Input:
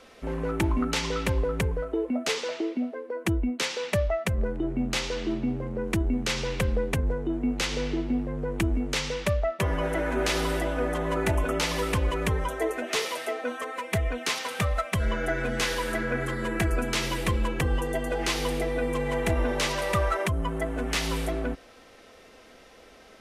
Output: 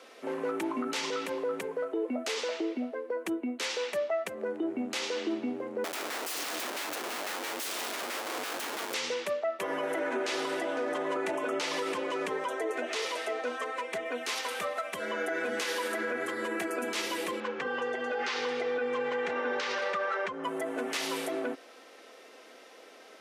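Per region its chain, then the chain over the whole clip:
0:05.84–0:08.94: high-shelf EQ 2,400 Hz −8 dB + wrap-around overflow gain 30.5 dB
0:09.99–0:14.06: low-pass filter 8,000 Hz + single-tap delay 506 ms −22 dB
0:17.40–0:20.44: low-pass filter 5,700 Hz 24 dB per octave + parametric band 1,500 Hz +7 dB 0.94 octaves + notch comb filter 330 Hz
whole clip: high-pass filter 280 Hz 24 dB per octave; brickwall limiter −23.5 dBFS

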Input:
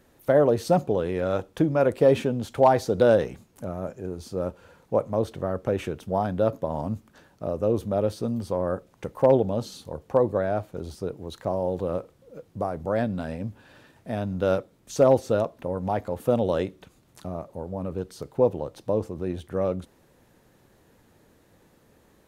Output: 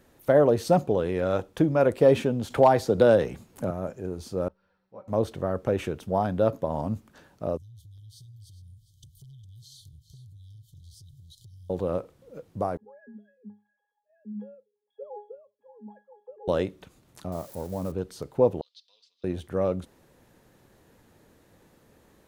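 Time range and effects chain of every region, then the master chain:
0:02.50–0:03.71: notch filter 6,000 Hz, Q 24 + multiband upward and downward compressor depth 40%
0:04.48–0:05.08: Chebyshev low-pass with heavy ripple 5,800 Hz, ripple 6 dB + tuned comb filter 190 Hz, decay 1.3 s, mix 80% + string-ensemble chorus
0:07.57–0:11.70: linear-phase brick-wall band-stop 150–3,000 Hz + downward compressor 12 to 1, threshold −46 dBFS + single-tap delay 407 ms −13.5 dB
0:12.77–0:16.48: three sine waves on the formant tracks + parametric band 1,900 Hz −12.5 dB 0.37 octaves + resonances in every octave G#, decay 0.28 s
0:17.32–0:17.92: spike at every zero crossing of −36 dBFS + parametric band 2,700 Hz −5 dB
0:18.61–0:19.24: flat-topped band-pass 4,100 Hz, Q 2.5 + comb filter 4.2 ms, depth 71%
whole clip: no processing

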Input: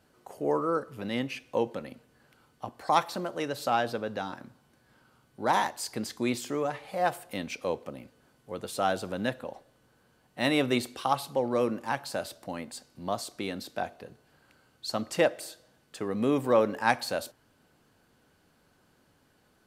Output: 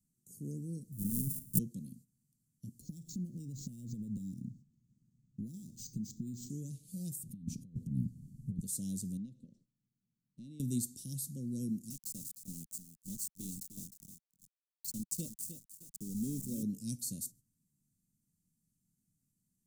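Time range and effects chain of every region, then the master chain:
0:00.92–0:01.59: samples sorted by size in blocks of 64 samples + flat-topped bell 3,500 Hz −14 dB 2.6 octaves + transient designer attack +8 dB, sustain +12 dB
0:02.81–0:06.50: low-shelf EQ 500 Hz +9 dB + downward compressor 12 to 1, threshold −32 dBFS + linearly interpolated sample-rate reduction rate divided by 4×
0:07.23–0:08.60: bass and treble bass +14 dB, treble −11 dB + compressor whose output falls as the input rises −36 dBFS, ratio −0.5
0:09.17–0:10.60: low-pass filter 2,900 Hz + low-shelf EQ 180 Hz −9.5 dB + downward compressor 3 to 1, threshold −37 dBFS
0:11.90–0:16.63: high-pass filter 250 Hz 6 dB per octave + centre clipping without the shift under −36.5 dBFS + feedback echo at a low word length 307 ms, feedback 35%, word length 7 bits, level −9 dB
whole clip: noise gate −53 dBFS, range −12 dB; elliptic band-stop filter 190–7,000 Hz, stop band 70 dB; parametric band 61 Hz −14.5 dB 1.1 octaves; level +5 dB

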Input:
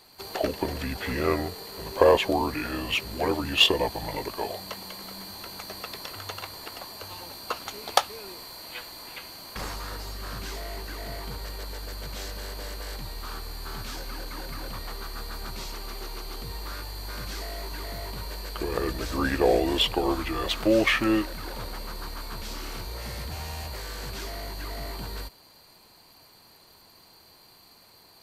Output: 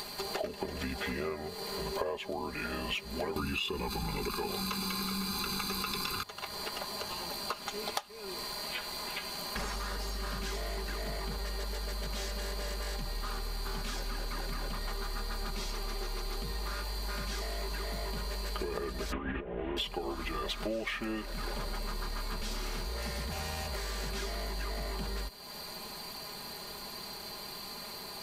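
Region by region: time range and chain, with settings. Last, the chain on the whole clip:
0:03.36–0:06.23: notch filter 960 Hz, Q 10 + comb filter 0.8 ms, depth 94% + envelope flattener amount 70%
0:19.12–0:19.77: linear delta modulator 16 kbit/s, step −36 dBFS + compressor whose output falls as the input rises −29 dBFS, ratio −0.5
whole clip: upward compression, threshold −33 dBFS; comb filter 4.9 ms, depth 65%; downward compressor 12 to 1, threshold −32 dBFS

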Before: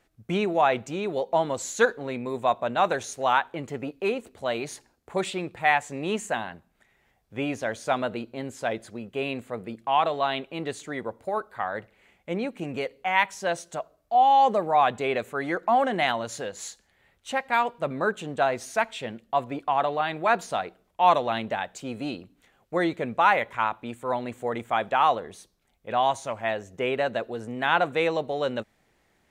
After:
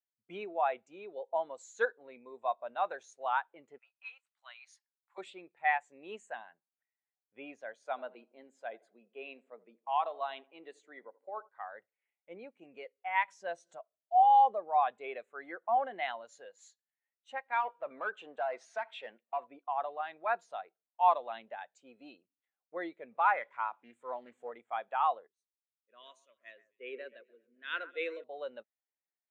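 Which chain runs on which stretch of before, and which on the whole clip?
0:03.78–0:05.18: high-pass filter 1,000 Hz 24 dB per octave + parametric band 5,300 Hz +4 dB 0.3 octaves
0:07.73–0:11.49: high-pass filter 160 Hz 24 dB per octave + feedback echo with a low-pass in the loop 82 ms, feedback 51%, low-pass 1,500 Hz, level −14.5 dB
0:13.28–0:13.78: low-shelf EQ 230 Hz +7 dB + upward compression, threshold −31 dBFS
0:17.60–0:19.47: downward compressor 3 to 1, threshold −24 dBFS + mid-hump overdrive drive 16 dB, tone 2,500 Hz, clips at −14 dBFS
0:23.11–0:24.51: mu-law and A-law mismatch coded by mu + highs frequency-modulated by the lows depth 0.18 ms
0:25.27–0:28.24: phaser with its sweep stopped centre 330 Hz, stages 4 + delay that swaps between a low-pass and a high-pass 132 ms, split 2,200 Hz, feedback 58%, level −8.5 dB + multiband upward and downward expander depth 100%
whole clip: meter weighting curve A; every bin expanded away from the loudest bin 1.5 to 1; level −7 dB

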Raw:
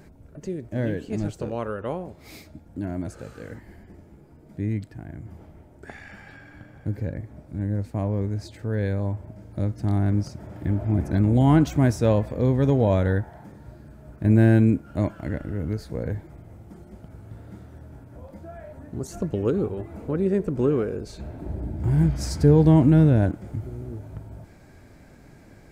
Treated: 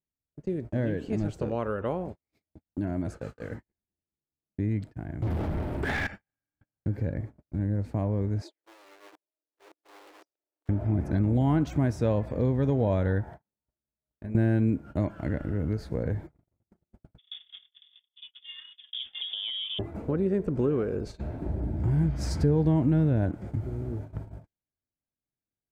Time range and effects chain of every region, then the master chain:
0:05.22–0:06.07: parametric band 6,200 Hz −11.5 dB 0.51 octaves + leveller curve on the samples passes 5
0:08.42–0:10.69: wrap-around overflow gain 25.5 dB + downward compressor 8 to 1, threshold −38 dBFS + linear-phase brick-wall high-pass 280 Hz
0:13.42–0:14.35: parametric band 120 Hz −7 dB 1.3 octaves + notch filter 310 Hz, Q 9.1 + downward compressor 10 to 1, threshold −34 dBFS
0:17.18–0:19.79: voice inversion scrambler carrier 3,500 Hz + downward compressor 12 to 1, threshold −29 dBFS
whole clip: noise gate −38 dBFS, range −50 dB; high-shelf EQ 4,900 Hz −9.5 dB; downward compressor 2 to 1, threshold −29 dBFS; level +2 dB

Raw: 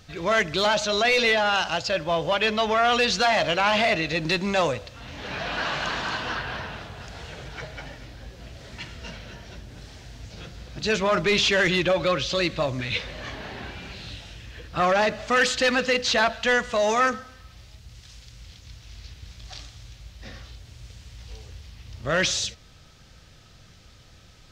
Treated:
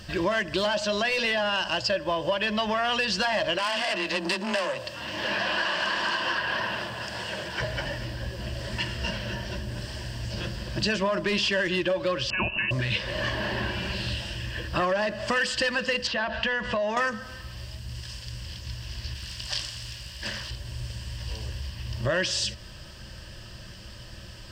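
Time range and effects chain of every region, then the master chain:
0:03.58–0:07.60: high-pass filter 290 Hz 6 dB per octave + frequency shifter +22 Hz + saturating transformer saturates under 3,600 Hz
0:12.30–0:12.71: parametric band 590 Hz −10 dB 1.5 octaves + voice inversion scrambler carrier 2,800 Hz
0:16.07–0:16.97: low-pass filter 3,600 Hz + downward compressor 4 to 1, threshold −29 dBFS
0:19.15–0:20.51: tilt shelving filter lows −5.5 dB, about 1,200 Hz + highs frequency-modulated by the lows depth 0.71 ms
whole clip: EQ curve with evenly spaced ripples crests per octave 1.3, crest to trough 10 dB; downward compressor 6 to 1, threshold −31 dBFS; level +7 dB

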